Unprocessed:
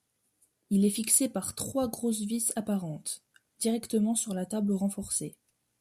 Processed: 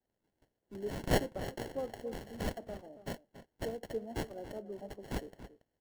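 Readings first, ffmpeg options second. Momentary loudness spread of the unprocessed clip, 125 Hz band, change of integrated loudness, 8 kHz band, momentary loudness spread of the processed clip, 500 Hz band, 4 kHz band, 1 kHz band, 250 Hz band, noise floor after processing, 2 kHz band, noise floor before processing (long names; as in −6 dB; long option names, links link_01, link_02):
10 LU, −6.5 dB, −10.5 dB, −22.5 dB, 15 LU, −4.0 dB, −6.0 dB, −1.0 dB, −14.0 dB, −85 dBFS, +4.0 dB, −78 dBFS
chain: -filter_complex "[0:a]highpass=frequency=330:width=0.5412,highpass=frequency=330:width=1.3066,adynamicequalizer=threshold=0.00501:dfrequency=4600:dqfactor=0.9:tfrequency=4600:tqfactor=0.9:attack=5:release=100:ratio=0.375:range=3:mode=boostabove:tftype=bell,acrossover=split=530|1000[link_01][link_02][link_03];[link_03]acrusher=samples=36:mix=1:aa=0.000001[link_04];[link_01][link_02][link_04]amix=inputs=3:normalize=0,asplit=2[link_05][link_06];[link_06]adelay=279.9,volume=-13dB,highshelf=frequency=4000:gain=-6.3[link_07];[link_05][link_07]amix=inputs=2:normalize=0,volume=-6.5dB"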